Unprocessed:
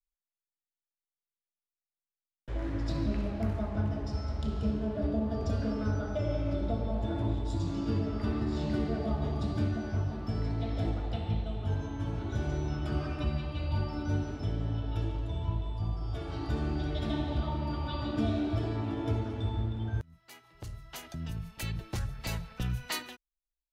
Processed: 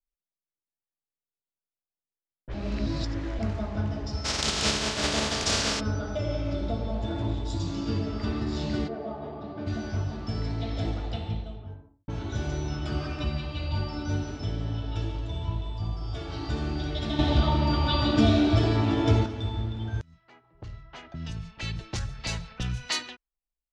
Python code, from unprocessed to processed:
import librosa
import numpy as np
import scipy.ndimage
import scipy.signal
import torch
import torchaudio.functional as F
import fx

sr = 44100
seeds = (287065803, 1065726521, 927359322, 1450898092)

y = fx.spec_flatten(x, sr, power=0.37, at=(4.24, 5.79), fade=0.02)
y = fx.bandpass_q(y, sr, hz=620.0, q=0.85, at=(8.87, 9.66), fade=0.02)
y = fx.studio_fade_out(y, sr, start_s=11.02, length_s=1.06)
y = fx.edit(y, sr, fx.reverse_span(start_s=2.54, length_s=0.85),
    fx.clip_gain(start_s=17.19, length_s=2.07, db=7.5), tone=tone)
y = fx.env_lowpass(y, sr, base_hz=630.0, full_db=-31.0)
y = scipy.signal.sosfilt(scipy.signal.butter(4, 7000.0, 'lowpass', fs=sr, output='sos'), y)
y = fx.high_shelf(y, sr, hz=2900.0, db=10.0)
y = y * librosa.db_to_amplitude(1.5)